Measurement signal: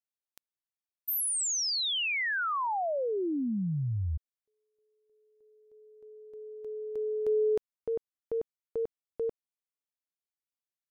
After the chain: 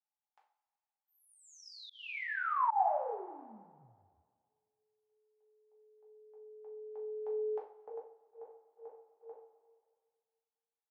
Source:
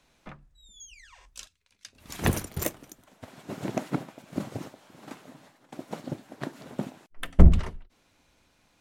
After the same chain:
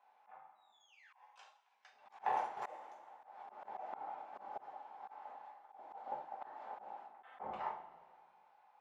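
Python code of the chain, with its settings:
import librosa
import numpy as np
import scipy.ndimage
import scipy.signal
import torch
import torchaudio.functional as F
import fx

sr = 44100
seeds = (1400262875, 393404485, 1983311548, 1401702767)

y = fx.ladder_bandpass(x, sr, hz=870.0, resonance_pct=80)
y = fx.rev_double_slope(y, sr, seeds[0], early_s=0.41, late_s=1.9, knee_db=-18, drr_db=-3.0)
y = fx.auto_swell(y, sr, attack_ms=203.0)
y = y * librosa.db_to_amplitude(3.5)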